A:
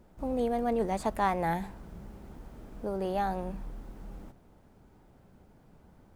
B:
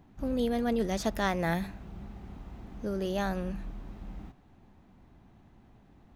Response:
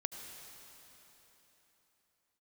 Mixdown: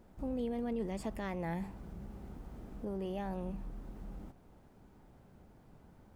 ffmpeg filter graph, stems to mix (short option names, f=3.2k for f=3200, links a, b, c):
-filter_complex "[0:a]alimiter=level_in=3.5dB:limit=-24dB:level=0:latency=1:release=19,volume=-3.5dB,acompressor=threshold=-49dB:ratio=1.5,volume=-2dB[a];[1:a]equalizer=f=9.4k:w=0.38:g=-12.5,volume=-10dB[b];[a][b]amix=inputs=2:normalize=0"